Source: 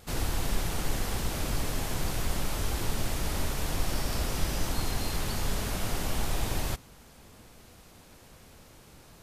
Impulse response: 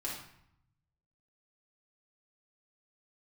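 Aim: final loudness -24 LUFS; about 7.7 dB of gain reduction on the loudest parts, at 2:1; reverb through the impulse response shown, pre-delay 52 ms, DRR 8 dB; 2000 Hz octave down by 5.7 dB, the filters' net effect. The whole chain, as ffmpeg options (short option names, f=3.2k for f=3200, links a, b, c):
-filter_complex "[0:a]equalizer=f=2k:t=o:g=-7.5,acompressor=threshold=-36dB:ratio=2,asplit=2[a][b];[1:a]atrim=start_sample=2205,adelay=52[c];[b][c]afir=irnorm=-1:irlink=0,volume=-10dB[d];[a][d]amix=inputs=2:normalize=0,volume=14.5dB"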